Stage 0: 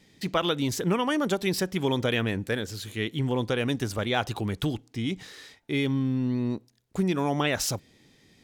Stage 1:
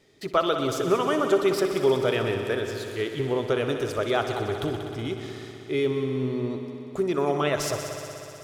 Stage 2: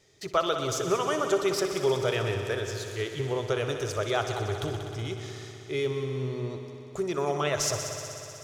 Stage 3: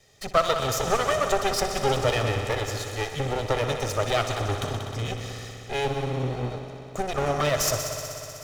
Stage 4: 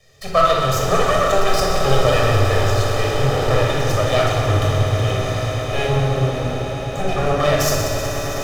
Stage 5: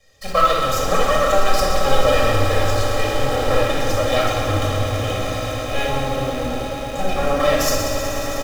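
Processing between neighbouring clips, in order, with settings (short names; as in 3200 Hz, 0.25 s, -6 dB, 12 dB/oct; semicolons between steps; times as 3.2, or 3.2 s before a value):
thirty-one-band EQ 200 Hz -9 dB, 400 Hz +12 dB, 630 Hz +9 dB, 1250 Hz +10 dB, 16000 Hz -5 dB; on a send: multi-head echo 62 ms, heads all three, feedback 75%, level -14 dB; on the sum: gain -3.5 dB
fifteen-band EQ 100 Hz +6 dB, 250 Hz -9 dB, 6300 Hz +9 dB; gain -2.5 dB
minimum comb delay 1.6 ms; gain +5 dB
on a send: swelling echo 0.108 s, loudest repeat 8, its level -15 dB; on the sum: shoebox room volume 3300 m³, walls furnished, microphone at 6 m
comb 3.7 ms, depth 65%; in parallel at -11 dB: bit-crush 4-bit; on the sum: gain -4 dB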